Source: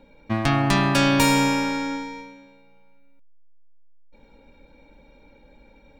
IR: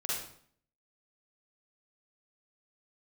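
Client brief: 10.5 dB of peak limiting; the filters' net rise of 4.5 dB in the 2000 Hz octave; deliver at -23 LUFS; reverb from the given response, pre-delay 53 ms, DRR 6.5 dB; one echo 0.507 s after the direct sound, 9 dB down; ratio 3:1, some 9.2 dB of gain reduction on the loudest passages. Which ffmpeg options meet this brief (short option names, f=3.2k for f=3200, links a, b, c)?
-filter_complex "[0:a]equalizer=f=2k:t=o:g=5.5,acompressor=threshold=-26dB:ratio=3,alimiter=limit=-21dB:level=0:latency=1,aecho=1:1:507:0.355,asplit=2[a][b];[1:a]atrim=start_sample=2205,adelay=53[c];[b][c]afir=irnorm=-1:irlink=0,volume=-11dB[d];[a][d]amix=inputs=2:normalize=0,volume=6dB"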